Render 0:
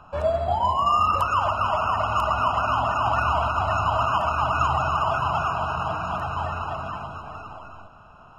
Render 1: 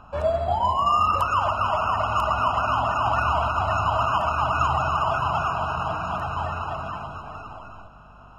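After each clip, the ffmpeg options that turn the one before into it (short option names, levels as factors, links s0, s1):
-af "aeval=exprs='val(0)+0.00282*(sin(2*PI*50*n/s)+sin(2*PI*2*50*n/s)/2+sin(2*PI*3*50*n/s)/3+sin(2*PI*4*50*n/s)/4+sin(2*PI*5*50*n/s)/5)':c=same"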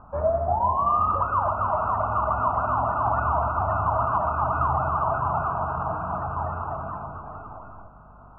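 -af "lowpass=f=1300:w=0.5412,lowpass=f=1300:w=1.3066"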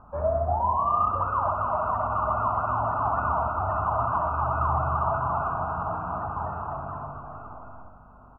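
-af "aecho=1:1:64|128|192|256|320|384:0.447|0.237|0.125|0.0665|0.0352|0.0187,volume=0.708"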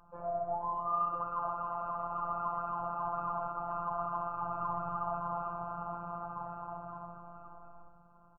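-filter_complex "[0:a]asplit=7[s0][s1][s2][s3][s4][s5][s6];[s1]adelay=122,afreqshift=-65,volume=0.126[s7];[s2]adelay=244,afreqshift=-130,volume=0.0794[s8];[s3]adelay=366,afreqshift=-195,volume=0.0501[s9];[s4]adelay=488,afreqshift=-260,volume=0.0316[s10];[s5]adelay=610,afreqshift=-325,volume=0.0197[s11];[s6]adelay=732,afreqshift=-390,volume=0.0124[s12];[s0][s7][s8][s9][s10][s11][s12]amix=inputs=7:normalize=0,afftfilt=real='hypot(re,im)*cos(PI*b)':imag='0':win_size=1024:overlap=0.75,volume=0.447"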